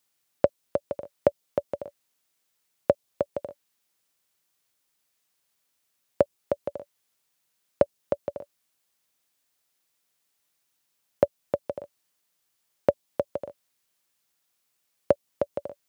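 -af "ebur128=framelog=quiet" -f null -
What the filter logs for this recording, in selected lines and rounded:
Integrated loudness:
  I:         -30.2 LUFS
  Threshold: -40.9 LUFS
Loudness range:
  LRA:         4.8 LU
  Threshold: -54.5 LUFS
  LRA low:   -37.0 LUFS
  LRA high:  -32.3 LUFS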